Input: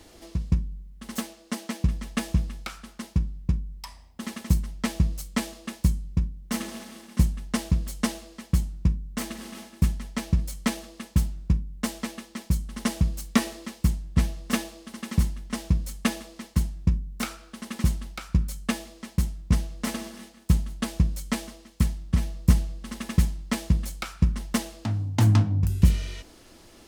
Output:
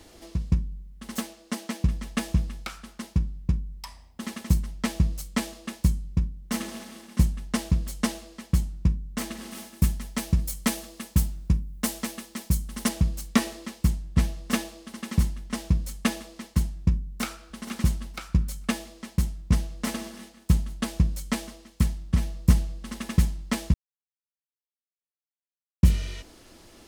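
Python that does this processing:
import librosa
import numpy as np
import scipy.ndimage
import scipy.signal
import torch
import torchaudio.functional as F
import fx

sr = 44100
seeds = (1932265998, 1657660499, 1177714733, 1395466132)

y = fx.high_shelf(x, sr, hz=8500.0, db=11.0, at=(9.51, 12.89))
y = fx.echo_throw(y, sr, start_s=17.03, length_s=0.57, ms=470, feedback_pct=25, wet_db=-12.0)
y = fx.edit(y, sr, fx.silence(start_s=23.74, length_s=2.09), tone=tone)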